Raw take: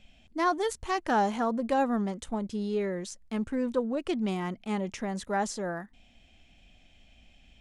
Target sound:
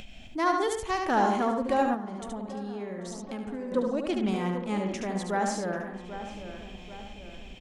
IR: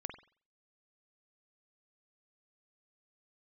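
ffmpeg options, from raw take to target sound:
-filter_complex "[0:a]asplit=2[a][b];[1:a]atrim=start_sample=2205,adelay=73[c];[b][c]afir=irnorm=-1:irlink=0,volume=-1.5dB[d];[a][d]amix=inputs=2:normalize=0,acompressor=mode=upward:threshold=-34dB:ratio=2.5,asplit=2[e][f];[f]adelay=790,lowpass=f=2.2k:p=1,volume=-11dB,asplit=2[g][h];[h]adelay=790,lowpass=f=2.2k:p=1,volume=0.52,asplit=2[i][j];[j]adelay=790,lowpass=f=2.2k:p=1,volume=0.52,asplit=2[k][l];[l]adelay=790,lowpass=f=2.2k:p=1,volume=0.52,asplit=2[m][n];[n]adelay=790,lowpass=f=2.2k:p=1,volume=0.52,asplit=2[o][p];[p]adelay=790,lowpass=f=2.2k:p=1,volume=0.52[q];[g][i][k][m][o][q]amix=inputs=6:normalize=0[r];[e][r]amix=inputs=2:normalize=0,asettb=1/sr,asplit=3[s][t][u];[s]atrim=end=1.944[v];[t]atrim=start=1.94:end=3.72,asetpts=PTS-STARTPTS,afade=t=in:d=0.004:c=qsin,afade=t=out:st=1.776:d=0.004:c=qsin,acompressor=threshold=-33dB:ratio=6[w];[u]atrim=start=3.716[x];[v][w]acrossfade=d=0.004:c1=hsin:c2=qsin[y];[y][x]acrossfade=d=0.004:c1=qsin:c2=hsin"

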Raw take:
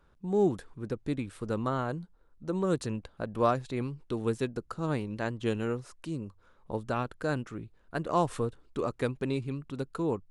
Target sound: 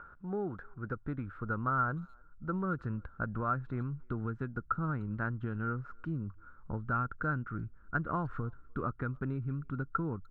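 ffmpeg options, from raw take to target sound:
-filter_complex "[0:a]asubboost=boost=5:cutoff=230,acompressor=mode=upward:threshold=-44dB:ratio=2.5,alimiter=limit=-17dB:level=0:latency=1:release=380,acompressor=threshold=-26dB:ratio=6,lowpass=f=1.4k:t=q:w=11,asplit=2[a][b];[b]adelay=300,highpass=300,lowpass=3.4k,asoftclip=type=hard:threshold=-20.5dB,volume=-30dB[c];[a][c]amix=inputs=2:normalize=0,volume=-6dB"

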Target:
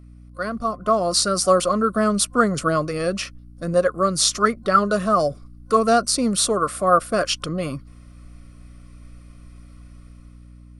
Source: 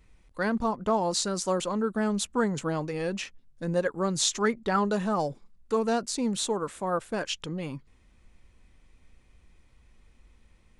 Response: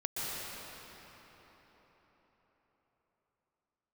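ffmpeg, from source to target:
-af "dynaudnorm=f=170:g=11:m=11dB,aeval=exprs='val(0)+0.0112*(sin(2*PI*60*n/s)+sin(2*PI*2*60*n/s)/2+sin(2*PI*3*60*n/s)/3+sin(2*PI*4*60*n/s)/4+sin(2*PI*5*60*n/s)/5)':c=same,superequalizer=8b=2:9b=0.316:10b=2.82:14b=2:16b=3.16,volume=-3.5dB"

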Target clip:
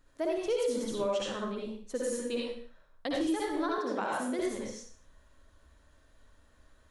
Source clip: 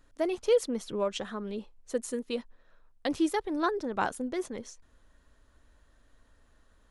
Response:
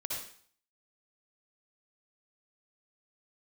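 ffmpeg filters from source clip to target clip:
-filter_complex "[1:a]atrim=start_sample=2205,afade=t=out:st=0.41:d=0.01,atrim=end_sample=18522[a];[0:a][a]afir=irnorm=-1:irlink=0,alimiter=limit=-22.5dB:level=0:latency=1:release=136,asettb=1/sr,asplit=3[b][c][d];[b]atrim=end=3.784[e];[c]atrim=start=3.78:end=4.39,asetpts=PTS-STARTPTS,afade=t=in:d=0.004:c=qsin,afade=t=out:st=0.606:d=0.004:c=qsin,highpass=f=170:w=0.5412,highpass=f=170:w=1.3066[f];[d]atrim=start=4.386[g];[e][f]acrossfade=d=0.004:c1=hsin:c2=qsin[h];[h][g]acrossfade=d=0.004:c1=qsin:c2=hsin"

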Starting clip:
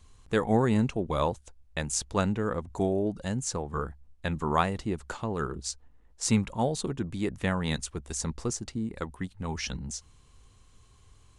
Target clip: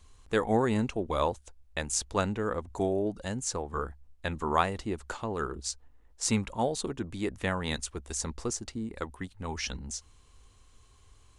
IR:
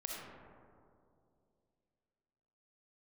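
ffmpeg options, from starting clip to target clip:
-af "equalizer=f=150:t=o:w=1:g=-8"

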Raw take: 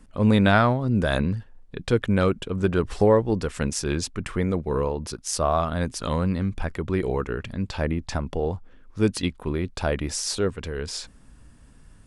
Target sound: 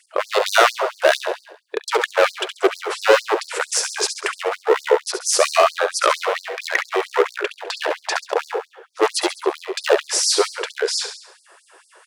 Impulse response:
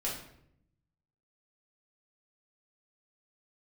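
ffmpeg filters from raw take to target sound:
-filter_complex "[0:a]highshelf=f=2.4k:g=-9.5,asplit=2[a][b];[b]acontrast=78,volume=3dB[c];[a][c]amix=inputs=2:normalize=0,asettb=1/sr,asplit=3[d][e][f];[d]atrim=end=6.014[g];[e]atrim=start=6.01:end=6.86,asetpts=PTS-STARTPTS,afade=t=in:d=0.004:c=qsin,afade=t=out:st=0.846:d=0.004:c=qsin,equalizer=f=250:t=o:w=1:g=3,equalizer=f=2k:t=o:w=1:g=12,equalizer=f=8k:t=o:w=1:g=-10[h];[f]atrim=start=6.856[i];[g][h]acrossfade=d=0.004:c1=hsin:c2=qsin[j];[j][i]acrossfade=d=0.004:c1=qsin:c2=hsin,volume=13dB,asoftclip=hard,volume=-13dB,aecho=1:1:68|136|204|272|340|408:0.398|0.199|0.0995|0.0498|0.0249|0.0124,afftfilt=real='re*gte(b*sr/1024,330*pow(4300/330,0.5+0.5*sin(2*PI*4.4*pts/sr)))':imag='im*gte(b*sr/1024,330*pow(4300/330,0.5+0.5*sin(2*PI*4.4*pts/sr)))':win_size=1024:overlap=0.75,volume=5.5dB"

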